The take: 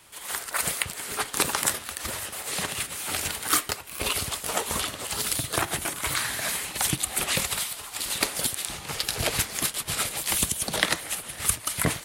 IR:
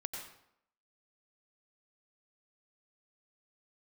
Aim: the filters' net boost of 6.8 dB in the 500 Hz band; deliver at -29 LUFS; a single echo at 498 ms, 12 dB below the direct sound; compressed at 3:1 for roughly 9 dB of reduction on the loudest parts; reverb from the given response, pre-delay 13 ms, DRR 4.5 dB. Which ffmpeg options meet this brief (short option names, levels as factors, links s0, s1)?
-filter_complex "[0:a]equalizer=f=500:t=o:g=8.5,acompressor=threshold=0.0316:ratio=3,aecho=1:1:498:0.251,asplit=2[s0][s1];[1:a]atrim=start_sample=2205,adelay=13[s2];[s1][s2]afir=irnorm=-1:irlink=0,volume=0.596[s3];[s0][s3]amix=inputs=2:normalize=0,volume=1.12"